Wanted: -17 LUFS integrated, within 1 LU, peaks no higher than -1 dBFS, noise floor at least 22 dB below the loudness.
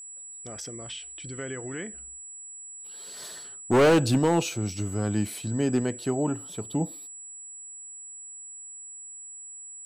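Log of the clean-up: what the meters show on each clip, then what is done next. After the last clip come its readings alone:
clipped samples 1.0%; clipping level -15.5 dBFS; steady tone 7.8 kHz; tone level -40 dBFS; loudness -27.5 LUFS; peak level -15.5 dBFS; loudness target -17.0 LUFS
-> clip repair -15.5 dBFS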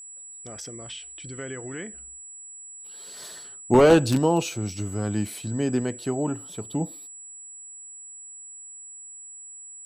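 clipped samples 0.0%; steady tone 7.8 kHz; tone level -40 dBFS
-> band-stop 7.8 kHz, Q 30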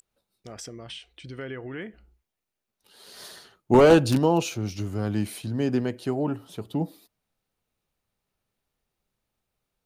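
steady tone not found; loudness -24.0 LUFS; peak level -6.5 dBFS; loudness target -17.0 LUFS
-> trim +7 dB; peak limiter -1 dBFS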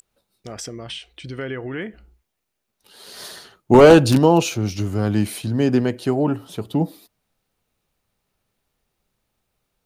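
loudness -17.5 LUFS; peak level -1.0 dBFS; noise floor -78 dBFS

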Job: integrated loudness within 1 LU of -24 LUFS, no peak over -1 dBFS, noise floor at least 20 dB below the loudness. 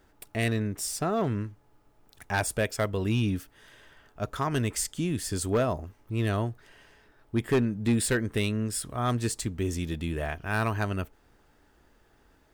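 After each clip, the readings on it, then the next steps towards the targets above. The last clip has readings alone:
clipped samples 0.5%; clipping level -18.5 dBFS; loudness -29.5 LUFS; peak level -18.5 dBFS; loudness target -24.0 LUFS
-> clip repair -18.5 dBFS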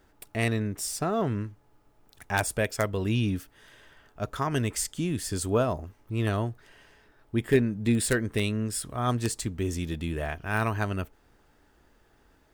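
clipped samples 0.0%; loudness -29.0 LUFS; peak level -9.5 dBFS; loudness target -24.0 LUFS
-> trim +5 dB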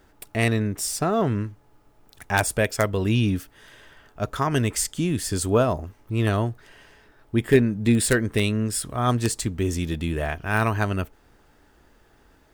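loudness -24.0 LUFS; peak level -4.5 dBFS; noise floor -58 dBFS

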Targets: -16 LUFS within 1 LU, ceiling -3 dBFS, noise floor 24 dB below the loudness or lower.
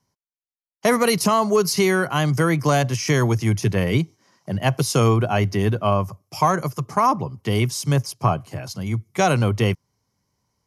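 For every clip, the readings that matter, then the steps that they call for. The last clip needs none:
loudness -21.0 LUFS; peak level -4.5 dBFS; loudness target -16.0 LUFS
-> trim +5 dB; peak limiter -3 dBFS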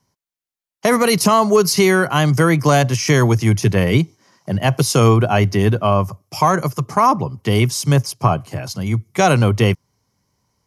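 loudness -16.0 LUFS; peak level -3.0 dBFS; noise floor -90 dBFS

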